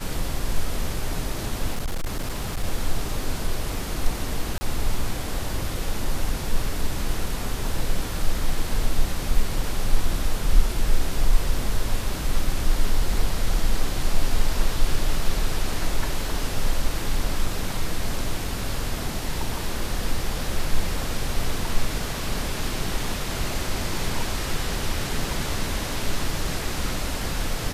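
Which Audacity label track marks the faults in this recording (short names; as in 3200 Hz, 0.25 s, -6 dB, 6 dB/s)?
1.740000	2.640000	clipped -22 dBFS
4.580000	4.610000	gap 30 ms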